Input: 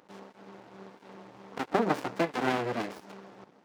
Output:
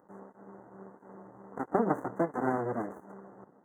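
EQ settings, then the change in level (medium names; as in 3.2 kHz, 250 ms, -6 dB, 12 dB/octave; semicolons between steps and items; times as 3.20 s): Chebyshev band-stop 2–6.1 kHz, order 5; Butterworth band-stop 3.5 kHz, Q 0.54; treble shelf 4.6 kHz -10 dB; 0.0 dB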